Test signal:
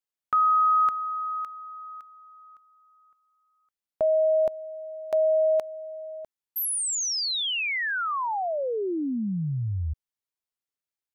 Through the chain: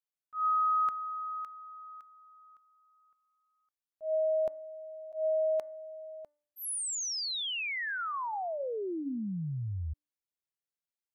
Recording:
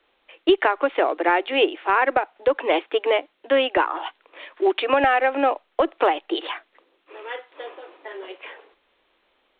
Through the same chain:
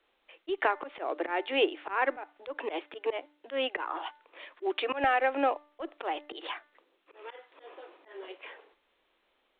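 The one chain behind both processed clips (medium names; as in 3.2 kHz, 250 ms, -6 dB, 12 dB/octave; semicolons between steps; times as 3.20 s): slow attack 136 ms; de-hum 295.8 Hz, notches 7; trim -7 dB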